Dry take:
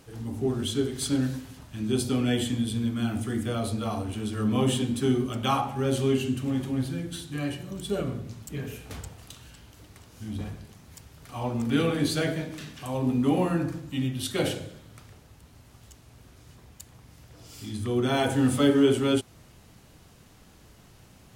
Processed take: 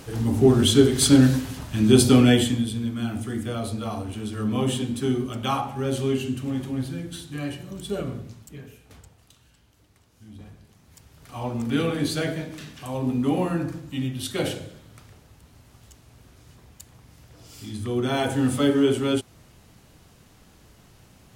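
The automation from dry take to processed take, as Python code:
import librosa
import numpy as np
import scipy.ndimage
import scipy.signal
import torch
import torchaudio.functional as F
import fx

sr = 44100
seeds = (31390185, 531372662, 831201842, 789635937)

y = fx.gain(x, sr, db=fx.line((2.19, 11.0), (2.76, 0.0), (8.2, 0.0), (8.76, -10.0), (10.38, -10.0), (11.35, 0.5)))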